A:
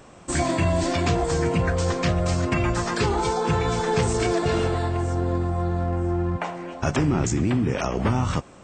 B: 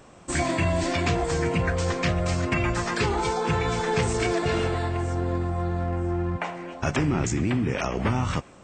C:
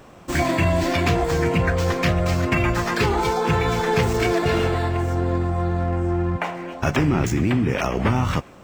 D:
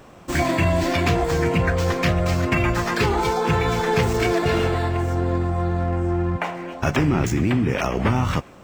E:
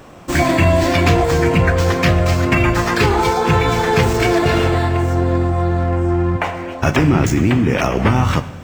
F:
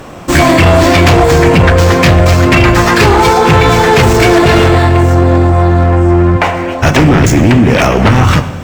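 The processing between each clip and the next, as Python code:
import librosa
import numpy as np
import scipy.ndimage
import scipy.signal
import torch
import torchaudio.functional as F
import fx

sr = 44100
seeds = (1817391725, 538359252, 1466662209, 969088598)

y1 = fx.dynamic_eq(x, sr, hz=2200.0, q=1.4, threshold_db=-45.0, ratio=4.0, max_db=5)
y1 = F.gain(torch.from_numpy(y1), -2.5).numpy()
y2 = scipy.ndimage.median_filter(y1, 5, mode='constant')
y2 = F.gain(torch.from_numpy(y2), 4.5).numpy()
y3 = y2
y4 = fx.rev_fdn(y3, sr, rt60_s=1.4, lf_ratio=1.3, hf_ratio=0.95, size_ms=62.0, drr_db=12.5)
y4 = F.gain(torch.from_numpy(y4), 5.5).numpy()
y5 = fx.fold_sine(y4, sr, drive_db=8, ceiling_db=-1.0)
y5 = F.gain(torch.from_numpy(y5), -1.0).numpy()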